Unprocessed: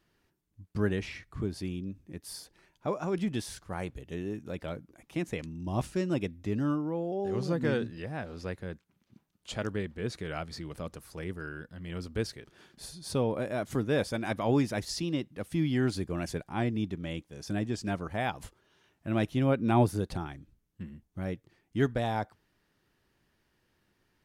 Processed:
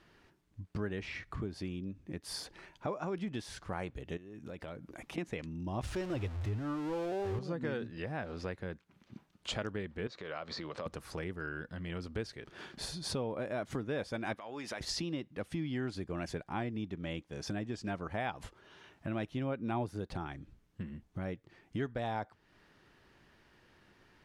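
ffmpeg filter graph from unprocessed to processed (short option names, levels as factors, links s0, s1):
-filter_complex "[0:a]asettb=1/sr,asplit=3[s0][s1][s2];[s0]atrim=end=4.174[s3];[s1]atrim=start=4.17:end=5.18,asetpts=PTS-STARTPTS,afade=t=in:d=0.004:c=qsin,afade=t=out:st=1.006:d=0.004:c=qsin,highshelf=f=9100:g=6,acompressor=threshold=0.00316:ratio=6:attack=3.2:release=140:knee=1:detection=peak[s4];[s2]atrim=start=5.176[s5];[s3][s4]acrossfade=d=0.004:c1=hsin:c2=qsin[s6];[s6][s5]acrossfade=d=0.004:c1=qsin:c2=hsin,asettb=1/sr,asplit=3[s7][s8][s9];[s7]atrim=end=5.834[s10];[s8]atrim=start=5.83:end=7.39,asetpts=PTS-STARTPTS,afade=t=in:d=0.004:c=qsin,afade=t=out:st=1.556:d=0.004:c=qsin,aeval=exprs='val(0)+0.5*0.0178*sgn(val(0))':c=same,lowshelf=f=130:t=q:w=3:g=7.5[s11];[s9]atrim=start=7.386[s12];[s10][s11]acrossfade=d=0.004:c1=hsin:c2=qsin[s13];[s13][s12]acrossfade=d=0.004:c1=qsin:c2=hsin,asettb=1/sr,asplit=3[s14][s15][s16];[s14]atrim=end=10.074[s17];[s15]atrim=start=10.07:end=10.86,asetpts=PTS-STARTPTS,afade=t=in:d=0.004:c=qsin,afade=t=out:st=0.786:d=0.004:c=qsin,highpass=160,equalizer=f=170:t=q:w=4:g=-4,equalizer=f=290:t=q:w=4:g=-4,equalizer=f=550:t=q:w=4:g=6,equalizer=f=1100:t=q:w=4:g=6,equalizer=f=4000:t=q:w=4:g=6,lowpass=f=6900:w=0.5412,lowpass=f=6900:w=1.3066,acompressor=threshold=0.00631:ratio=3:attack=3.2:release=140:knee=1:detection=peak[s18];[s16]atrim=start=10.856[s19];[s17][s18]acrossfade=d=0.004:c1=hsin:c2=qsin[s20];[s20][s19]acrossfade=d=0.004:c1=qsin:c2=hsin,asettb=1/sr,asplit=3[s21][s22][s23];[s21]atrim=end=14.344[s24];[s22]atrim=start=14.34:end=14.81,asetpts=PTS-STARTPTS,afade=t=in:d=0.004:c=qsin,afade=t=out:st=0.466:d=0.004:c=qsin,highpass=f=880:p=1,acompressor=threshold=0.00794:ratio=6:attack=3.2:release=140:knee=1:detection=peak[s25];[s23]atrim=start=14.806[s26];[s24][s25]acrossfade=d=0.004:c1=hsin:c2=qsin[s27];[s27][s26]acrossfade=d=0.004:c1=qsin:c2=hsin,aemphasis=mode=reproduction:type=50fm,acompressor=threshold=0.00398:ratio=3,lowshelf=f=450:g=-5,volume=3.76"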